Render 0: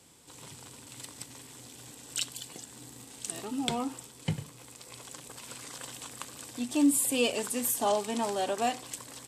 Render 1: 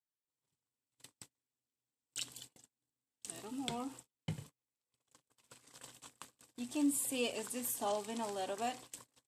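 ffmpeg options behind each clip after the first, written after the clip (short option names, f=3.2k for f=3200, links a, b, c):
-af "agate=range=-39dB:threshold=-42dB:ratio=16:detection=peak,volume=-9dB"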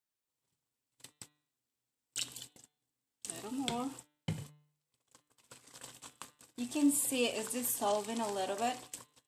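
-af "bandreject=f=148.8:t=h:w=4,bandreject=f=297.6:t=h:w=4,bandreject=f=446.4:t=h:w=4,bandreject=f=595.2:t=h:w=4,bandreject=f=744:t=h:w=4,bandreject=f=892.8:t=h:w=4,bandreject=f=1.0416k:t=h:w=4,bandreject=f=1.1904k:t=h:w=4,bandreject=f=1.3392k:t=h:w=4,bandreject=f=1.488k:t=h:w=4,bandreject=f=1.6368k:t=h:w=4,bandreject=f=1.7856k:t=h:w=4,bandreject=f=1.9344k:t=h:w=4,bandreject=f=2.0832k:t=h:w=4,bandreject=f=2.232k:t=h:w=4,bandreject=f=2.3808k:t=h:w=4,bandreject=f=2.5296k:t=h:w=4,bandreject=f=2.6784k:t=h:w=4,bandreject=f=2.8272k:t=h:w=4,bandreject=f=2.976k:t=h:w=4,bandreject=f=3.1248k:t=h:w=4,bandreject=f=3.2736k:t=h:w=4,bandreject=f=3.4224k:t=h:w=4,bandreject=f=3.5712k:t=h:w=4,bandreject=f=3.72k:t=h:w=4,bandreject=f=3.8688k:t=h:w=4,bandreject=f=4.0176k:t=h:w=4,bandreject=f=4.1664k:t=h:w=4,volume=4dB"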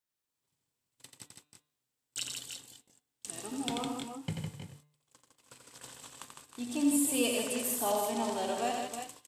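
-af "aecho=1:1:87|157|314|336:0.562|0.531|0.282|0.355"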